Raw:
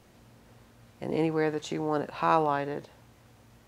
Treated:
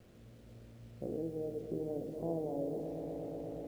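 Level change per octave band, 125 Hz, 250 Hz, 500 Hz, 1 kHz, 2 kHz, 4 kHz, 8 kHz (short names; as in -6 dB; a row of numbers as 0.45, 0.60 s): -7.0 dB, -7.5 dB, -7.5 dB, -22.5 dB, under -30 dB, under -20 dB, under -15 dB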